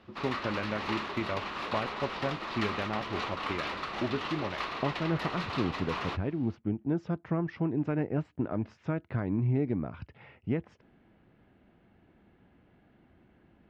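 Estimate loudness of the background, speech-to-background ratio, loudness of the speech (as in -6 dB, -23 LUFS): -36.0 LUFS, 2.0 dB, -34.0 LUFS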